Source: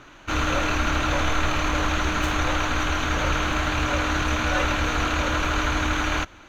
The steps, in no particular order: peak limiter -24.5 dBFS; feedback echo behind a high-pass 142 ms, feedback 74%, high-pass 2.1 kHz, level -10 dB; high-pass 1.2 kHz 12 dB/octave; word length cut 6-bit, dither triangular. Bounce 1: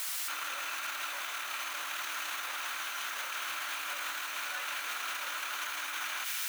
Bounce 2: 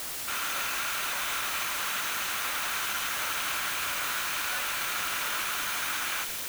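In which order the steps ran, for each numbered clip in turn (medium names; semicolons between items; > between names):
word length cut > feedback echo behind a high-pass > peak limiter > high-pass; high-pass > peak limiter > word length cut > feedback echo behind a high-pass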